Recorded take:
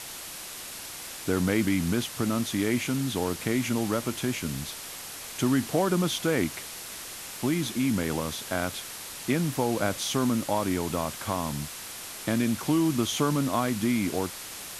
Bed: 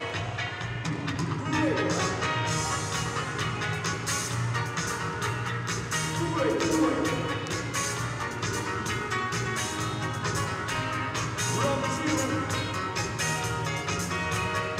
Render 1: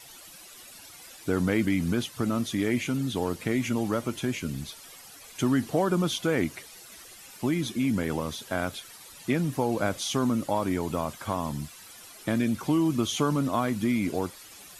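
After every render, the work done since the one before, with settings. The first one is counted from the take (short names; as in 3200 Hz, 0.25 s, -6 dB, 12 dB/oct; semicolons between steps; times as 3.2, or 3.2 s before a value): denoiser 13 dB, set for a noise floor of -40 dBFS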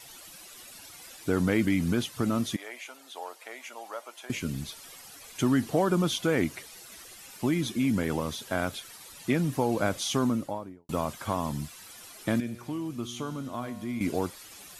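2.56–4.3 ladder high-pass 570 Hz, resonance 40%; 10.15–10.89 studio fade out; 12.4–14.01 resonator 120 Hz, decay 1.6 s, mix 70%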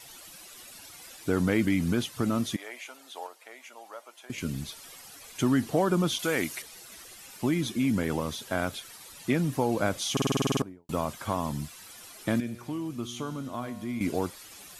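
3.27–4.38 gain -5 dB; 6.19–6.62 tilt +2.5 dB/oct; 10.12 stutter in place 0.05 s, 10 plays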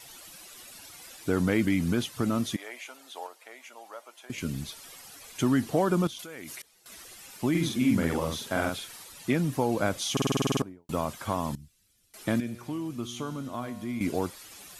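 6.07–6.86 level quantiser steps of 21 dB; 7.5–9.04 doubler 48 ms -3 dB; 11.55–12.14 passive tone stack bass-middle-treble 10-0-1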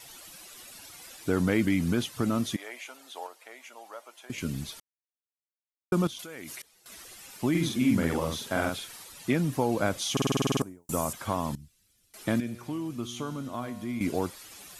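4.8–5.92 mute; 10.61–11.13 resonant high shelf 5400 Hz +11 dB, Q 1.5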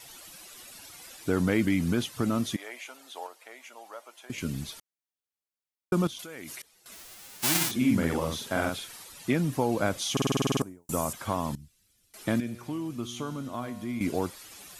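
6.93–7.7 spectral whitening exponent 0.1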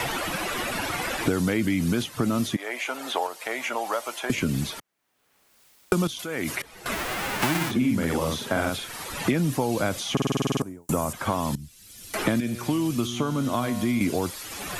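in parallel at -2 dB: limiter -23 dBFS, peak gain reduction 11.5 dB; on the sum: three-band squash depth 100%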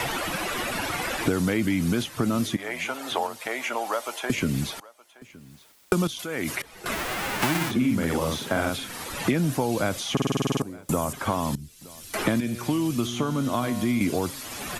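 echo 0.92 s -22 dB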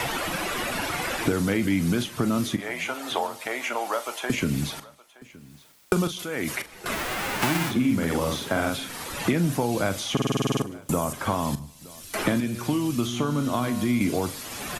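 doubler 41 ms -12.5 dB; feedback echo 0.15 s, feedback 36%, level -23.5 dB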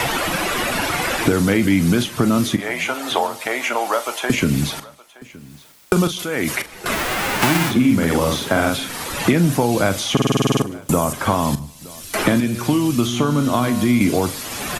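gain +7.5 dB; limiter -3 dBFS, peak gain reduction 2.5 dB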